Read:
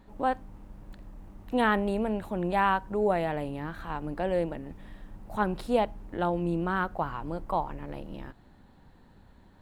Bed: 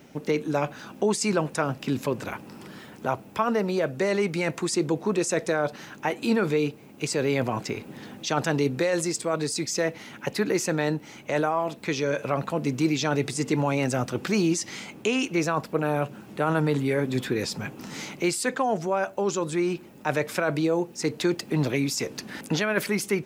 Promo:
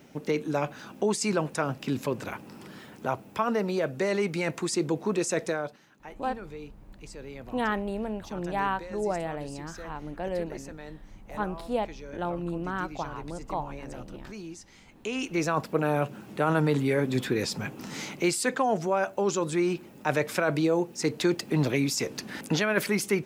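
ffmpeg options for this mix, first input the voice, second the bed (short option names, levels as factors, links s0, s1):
-filter_complex "[0:a]adelay=6000,volume=0.668[s0];[1:a]volume=5.62,afade=t=out:st=5.44:d=0.36:silence=0.16788,afade=t=in:st=14.85:d=0.74:silence=0.133352[s1];[s0][s1]amix=inputs=2:normalize=0"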